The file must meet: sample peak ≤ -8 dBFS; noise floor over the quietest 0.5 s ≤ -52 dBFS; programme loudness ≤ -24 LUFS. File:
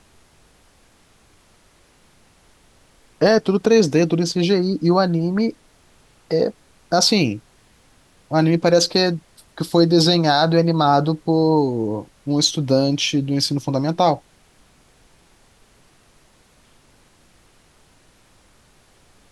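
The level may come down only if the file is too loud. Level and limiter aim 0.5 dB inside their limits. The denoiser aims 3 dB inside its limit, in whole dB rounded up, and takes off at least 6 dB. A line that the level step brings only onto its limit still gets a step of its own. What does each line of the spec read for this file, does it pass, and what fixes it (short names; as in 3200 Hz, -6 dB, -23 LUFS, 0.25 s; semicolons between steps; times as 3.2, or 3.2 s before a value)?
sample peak -4.0 dBFS: fail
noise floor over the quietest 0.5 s -55 dBFS: OK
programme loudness -18.0 LUFS: fail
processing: gain -6.5 dB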